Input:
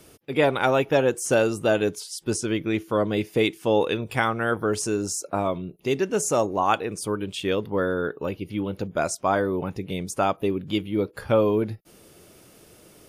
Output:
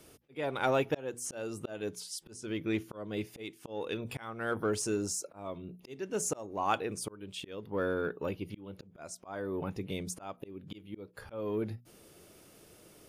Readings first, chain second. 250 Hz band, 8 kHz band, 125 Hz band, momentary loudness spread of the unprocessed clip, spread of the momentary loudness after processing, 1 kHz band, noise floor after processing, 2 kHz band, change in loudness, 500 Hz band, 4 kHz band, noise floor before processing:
-11.5 dB, -7.5 dB, -11.5 dB, 8 LU, 15 LU, -12.0 dB, -59 dBFS, -12.0 dB, -11.5 dB, -12.5 dB, -11.0 dB, -53 dBFS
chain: notches 60/120/180/240 Hz; auto swell 0.424 s; in parallel at -10 dB: soft clip -26 dBFS, distortion -8 dB; on the sum: gain -8 dB

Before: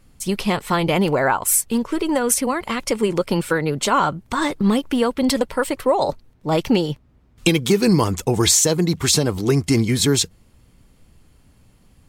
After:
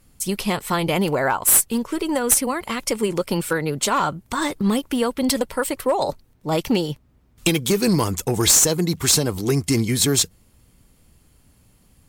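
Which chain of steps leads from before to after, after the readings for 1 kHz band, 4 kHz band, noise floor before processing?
-2.5 dB, -1.0 dB, -55 dBFS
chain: high shelf 7700 Hz +11 dB; one-sided clip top -10 dBFS; gain -2.5 dB

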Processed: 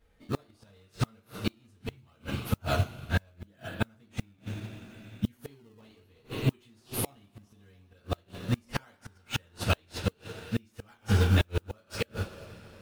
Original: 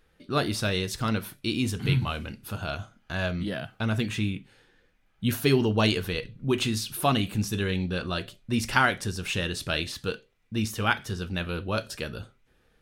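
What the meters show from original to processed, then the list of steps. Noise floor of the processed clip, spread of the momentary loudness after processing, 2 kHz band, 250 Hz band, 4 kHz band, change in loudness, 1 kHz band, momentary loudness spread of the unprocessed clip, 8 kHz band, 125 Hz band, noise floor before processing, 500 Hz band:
-65 dBFS, 16 LU, -9.0 dB, -7.0 dB, -9.0 dB, -5.0 dB, -9.0 dB, 11 LU, -6.5 dB, -2.0 dB, -66 dBFS, -7.5 dB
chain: two-slope reverb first 0.25 s, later 4.8 s, from -22 dB, DRR -7.5 dB; in parallel at -5 dB: decimation with a swept rate 17×, swing 160% 0.73 Hz; on the sum: flipped gate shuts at -9 dBFS, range -31 dB; modulation noise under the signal 33 dB; upward expander 1.5:1, over -35 dBFS; gain -3 dB

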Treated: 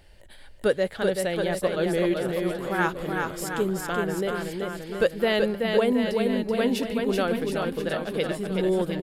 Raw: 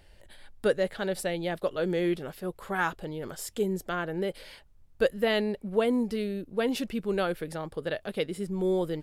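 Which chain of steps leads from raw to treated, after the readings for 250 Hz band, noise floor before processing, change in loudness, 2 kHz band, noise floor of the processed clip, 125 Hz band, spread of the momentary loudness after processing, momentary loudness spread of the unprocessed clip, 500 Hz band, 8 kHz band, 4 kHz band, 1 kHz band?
+4.5 dB, -57 dBFS, +4.5 dB, +4.5 dB, -47 dBFS, +4.5 dB, 6 LU, 9 LU, +4.5 dB, +4.5 dB, +4.5 dB, +4.5 dB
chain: bouncing-ball echo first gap 0.38 s, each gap 0.9×, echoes 5; gain +2.5 dB

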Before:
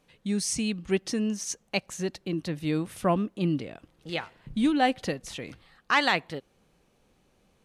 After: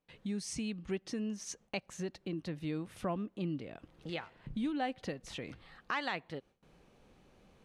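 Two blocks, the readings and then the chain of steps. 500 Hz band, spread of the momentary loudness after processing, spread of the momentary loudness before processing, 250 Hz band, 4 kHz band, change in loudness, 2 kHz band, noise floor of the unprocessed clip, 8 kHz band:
-10.0 dB, 9 LU, 15 LU, -9.5 dB, -12.0 dB, -11.0 dB, -12.0 dB, -68 dBFS, -12.0 dB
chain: high shelf 6400 Hz -11.5 dB; compressor 2:1, threshold -48 dBFS, peak gain reduction 16 dB; gate with hold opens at -57 dBFS; gain +3 dB

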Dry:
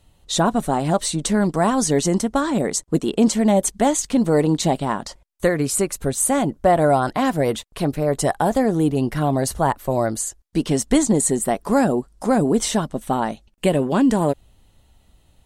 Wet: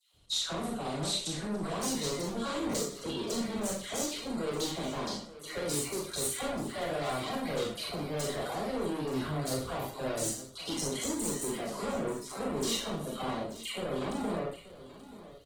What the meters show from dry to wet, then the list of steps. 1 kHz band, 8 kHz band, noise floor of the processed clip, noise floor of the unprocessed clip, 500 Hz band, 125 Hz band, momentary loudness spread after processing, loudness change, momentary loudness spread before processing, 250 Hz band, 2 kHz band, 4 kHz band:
-16.0 dB, -11.5 dB, -50 dBFS, -57 dBFS, -14.5 dB, -16.0 dB, 5 LU, -14.0 dB, 6 LU, -16.5 dB, -11.5 dB, -4.5 dB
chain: dynamic EQ 470 Hz, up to +4 dB, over -29 dBFS, Q 1.8; compressor 2.5:1, threshold -18 dBFS, peak gain reduction 6 dB; limiter -12.5 dBFS, peak gain reduction 6 dB; dispersion lows, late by 0.138 s, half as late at 1200 Hz; pump 83 bpm, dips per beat 1, -3 dB, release 0.213 s; notch comb 890 Hz; soft clip -25.5 dBFS, distortion -8 dB; fifteen-band EQ 250 Hz -5 dB, 630 Hz -3 dB, 1600 Hz -3 dB, 4000 Hz +8 dB; echo 0.881 s -16 dB; Schroeder reverb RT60 0.44 s, combs from 27 ms, DRR -1 dB; gain -6 dB; Opus 16 kbps 48000 Hz

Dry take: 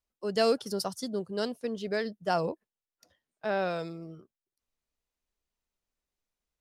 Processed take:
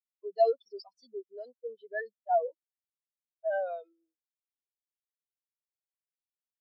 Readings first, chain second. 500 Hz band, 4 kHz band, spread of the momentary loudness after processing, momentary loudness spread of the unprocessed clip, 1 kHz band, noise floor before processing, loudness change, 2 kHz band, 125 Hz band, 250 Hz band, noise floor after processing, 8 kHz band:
-1.0 dB, under -15 dB, 18 LU, 13 LU, +1.0 dB, under -85 dBFS, -1.0 dB, -5.0 dB, under -40 dB, under -20 dB, under -85 dBFS, n/a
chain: overdrive pedal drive 25 dB, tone 4600 Hz, clips at -14 dBFS; graphic EQ 125/1000/2000/4000/8000 Hz -7/+4/+5/+8/+11 dB; spectral expander 4:1; gain -8 dB

